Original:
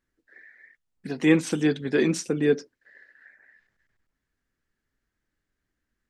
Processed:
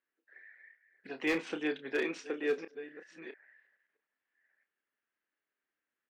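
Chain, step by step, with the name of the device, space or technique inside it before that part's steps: chunks repeated in reverse 662 ms, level -14 dB; 1.92–2.58 s: high-pass 230 Hz 12 dB/octave; megaphone (band-pass 470–2800 Hz; peaking EQ 2.7 kHz +5 dB 0.54 oct; hard clipper -19 dBFS, distortion -16 dB; doubling 30 ms -9.5 dB); trim -5.5 dB

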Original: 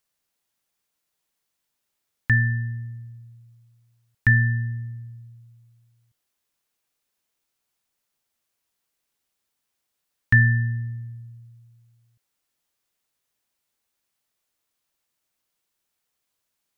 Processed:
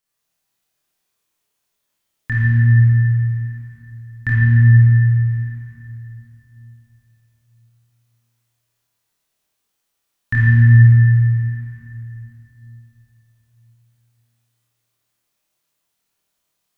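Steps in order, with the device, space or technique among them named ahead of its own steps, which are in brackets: tunnel (flutter echo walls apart 4.5 m, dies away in 0.38 s; reverberation RT60 3.4 s, pre-delay 22 ms, DRR -6.5 dB); 4.34–5.30 s: distance through air 53 m; trim -4 dB

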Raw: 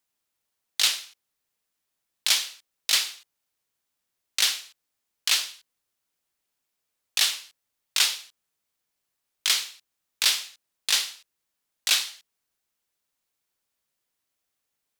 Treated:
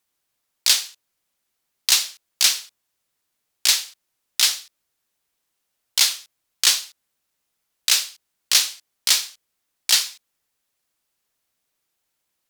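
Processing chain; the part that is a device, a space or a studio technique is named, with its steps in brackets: nightcore (tape speed +20%); trim +5.5 dB

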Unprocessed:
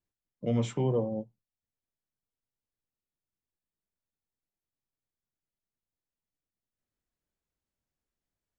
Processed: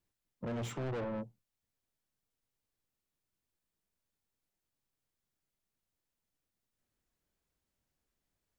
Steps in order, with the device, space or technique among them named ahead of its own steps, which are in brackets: saturation between pre-emphasis and de-emphasis (treble shelf 4.1 kHz +12 dB; saturation -40 dBFS, distortion -4 dB; treble shelf 4.1 kHz -12 dB); trim +4.5 dB

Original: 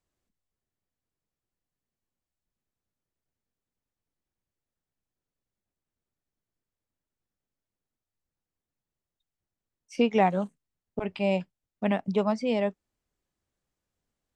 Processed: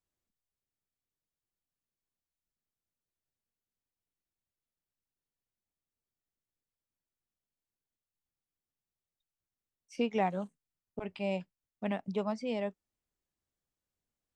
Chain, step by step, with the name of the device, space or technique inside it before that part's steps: exciter from parts (in parallel at -9.5 dB: high-pass 4.5 kHz 6 dB/octave + saturation -35 dBFS, distortion -12 dB); on the sum: trim -8 dB

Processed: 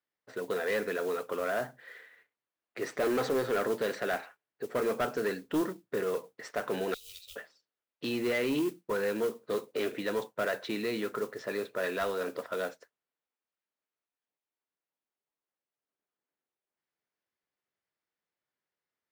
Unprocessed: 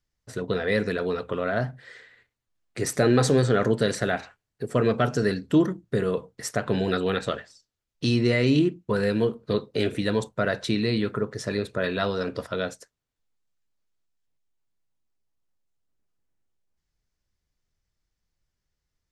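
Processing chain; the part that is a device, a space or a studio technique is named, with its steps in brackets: carbon microphone (band-pass 360–2800 Hz; saturation -21.5 dBFS, distortion -14 dB; modulation noise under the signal 20 dB); 6.94–7.36 s: inverse Chebyshev band-stop 140–1700 Hz, stop band 40 dB; trim -2 dB

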